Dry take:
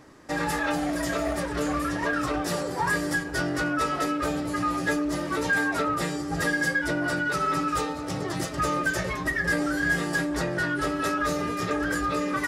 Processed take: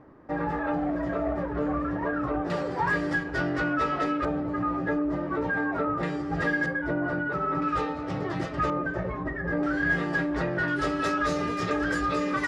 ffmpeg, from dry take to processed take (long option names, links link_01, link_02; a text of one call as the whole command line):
ffmpeg -i in.wav -af "asetnsamples=nb_out_samples=441:pad=0,asendcmd='2.5 lowpass f 2900;4.25 lowpass f 1300;6.03 lowpass f 2500;6.66 lowpass f 1300;7.62 lowpass f 2600;8.7 lowpass f 1100;9.63 lowpass f 2600;10.68 lowpass f 5500',lowpass=1200" out.wav